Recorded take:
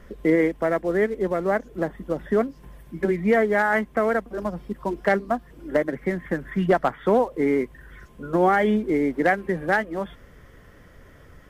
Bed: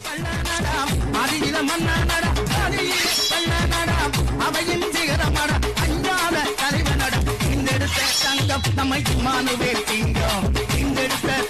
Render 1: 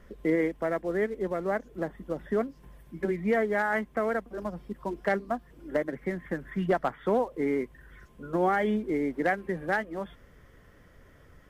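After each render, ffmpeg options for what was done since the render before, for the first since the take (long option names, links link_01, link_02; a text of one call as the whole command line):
ffmpeg -i in.wav -af "volume=-6.5dB" out.wav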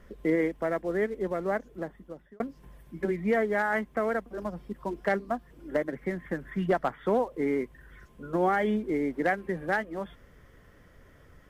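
ffmpeg -i in.wav -filter_complex "[0:a]asplit=2[link_01][link_02];[link_01]atrim=end=2.4,asetpts=PTS-STARTPTS,afade=type=out:start_time=1.56:duration=0.84[link_03];[link_02]atrim=start=2.4,asetpts=PTS-STARTPTS,afade=type=in:duration=0.004:curve=hsin[link_04];[link_03][link_04]concat=n=2:v=0:a=1" out.wav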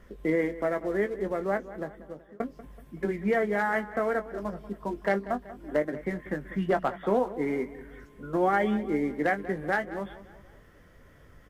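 ffmpeg -i in.wav -filter_complex "[0:a]asplit=2[link_01][link_02];[link_02]adelay=20,volume=-9dB[link_03];[link_01][link_03]amix=inputs=2:normalize=0,asplit=2[link_04][link_05];[link_05]adelay=189,lowpass=frequency=3600:poles=1,volume=-15.5dB,asplit=2[link_06][link_07];[link_07]adelay=189,lowpass=frequency=3600:poles=1,volume=0.49,asplit=2[link_08][link_09];[link_09]adelay=189,lowpass=frequency=3600:poles=1,volume=0.49,asplit=2[link_10][link_11];[link_11]adelay=189,lowpass=frequency=3600:poles=1,volume=0.49[link_12];[link_04][link_06][link_08][link_10][link_12]amix=inputs=5:normalize=0" out.wav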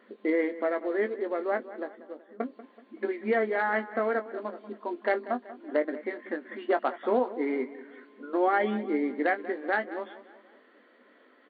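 ffmpeg -i in.wav -af "afftfilt=real='re*between(b*sr/4096,210,4600)':imag='im*between(b*sr/4096,210,4600)':win_size=4096:overlap=0.75" out.wav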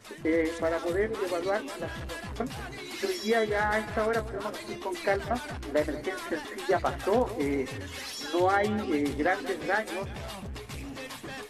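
ffmpeg -i in.wav -i bed.wav -filter_complex "[1:a]volume=-18.5dB[link_01];[0:a][link_01]amix=inputs=2:normalize=0" out.wav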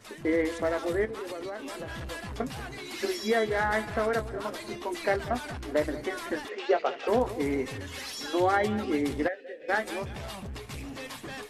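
ffmpeg -i in.wav -filter_complex "[0:a]asettb=1/sr,asplit=3[link_01][link_02][link_03];[link_01]atrim=end=1.054[link_04];[link_02]atrim=start=1.05:end=1.97,asetpts=PTS-STARTPTS,afade=type=in:duration=0.004:curve=qsin,afade=type=out:start_time=0.916:duration=0.004:curve=qsin,acompressor=threshold=-33dB:ratio=6:attack=3.2:release=140:knee=1:detection=peak[link_05];[link_03]atrim=start=1.966[link_06];[link_04][link_05]acrossfade=duration=0.004:curve1=hsin:curve2=qsin[link_07];[link_07][link_06]acrossfade=duration=0.004:curve1=qsin:curve2=hsin,asplit=3[link_08][link_09][link_10];[link_08]afade=type=out:start_time=6.48:duration=0.02[link_11];[link_09]highpass=frequency=280:width=0.5412,highpass=frequency=280:width=1.3066,equalizer=frequency=300:width_type=q:width=4:gain=-10,equalizer=frequency=450:width_type=q:width=4:gain=10,equalizer=frequency=1000:width_type=q:width=4:gain=-5,equalizer=frequency=1700:width_type=q:width=4:gain=-4,equalizer=frequency=2700:width_type=q:width=4:gain=7,equalizer=frequency=4000:width_type=q:width=4:gain=-3,lowpass=frequency=5400:width=0.5412,lowpass=frequency=5400:width=1.3066,afade=type=in:start_time=6.48:duration=0.02,afade=type=out:start_time=7.07:duration=0.02[link_12];[link_10]afade=type=in:start_time=7.07:duration=0.02[link_13];[link_11][link_12][link_13]amix=inputs=3:normalize=0,asplit=3[link_14][link_15][link_16];[link_14]afade=type=out:start_time=9.27:duration=0.02[link_17];[link_15]asplit=3[link_18][link_19][link_20];[link_18]bandpass=frequency=530:width_type=q:width=8,volume=0dB[link_21];[link_19]bandpass=frequency=1840:width_type=q:width=8,volume=-6dB[link_22];[link_20]bandpass=frequency=2480:width_type=q:width=8,volume=-9dB[link_23];[link_21][link_22][link_23]amix=inputs=3:normalize=0,afade=type=in:start_time=9.27:duration=0.02,afade=type=out:start_time=9.68:duration=0.02[link_24];[link_16]afade=type=in:start_time=9.68:duration=0.02[link_25];[link_17][link_24][link_25]amix=inputs=3:normalize=0" out.wav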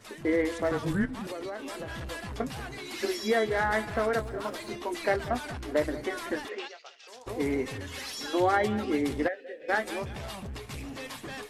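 ffmpeg -i in.wav -filter_complex "[0:a]asettb=1/sr,asplit=3[link_01][link_02][link_03];[link_01]atrim=end=0.714[link_04];[link_02]atrim=start=0.71:end=1.27,asetpts=PTS-STARTPTS,afade=type=in:duration=0.004:curve=qsin,afade=type=out:start_time=0.556:duration=0.004:curve=qsin,afreqshift=-190[link_05];[link_03]atrim=start=1.266[link_06];[link_04][link_05]acrossfade=duration=0.004:curve1=hsin:curve2=qsin[link_07];[link_07][link_06]acrossfade=duration=0.004:curve1=qsin:curve2=hsin,asettb=1/sr,asplit=3[link_08][link_09][link_10];[link_08]atrim=end=3.914[link_11];[link_09]atrim=start=3.91:end=4.7,asetpts=PTS-STARTPTS,afade=type=in:duration=0.004:curve=qsin,afade=type=out:start_time=0.786:duration=0.004:curve=qsin,aeval=exprs='val(0)*gte(abs(val(0)),0.0015)':channel_layout=same[link_12];[link_10]atrim=start=4.696[link_13];[link_11][link_12]acrossfade=duration=0.004:curve1=hsin:curve2=qsin[link_14];[link_14][link_13]acrossfade=duration=0.004:curve1=qsin:curve2=hsin,asplit=3[link_15][link_16][link_17];[link_15]afade=type=out:start_time=6.67:duration=0.02[link_18];[link_16]bandpass=frequency=6000:width_type=q:width=1.7,afade=type=in:start_time=6.67:duration=0.02,afade=type=out:start_time=7.26:duration=0.02[link_19];[link_17]afade=type=in:start_time=7.26:duration=0.02[link_20];[link_18][link_19][link_20]amix=inputs=3:normalize=0" out.wav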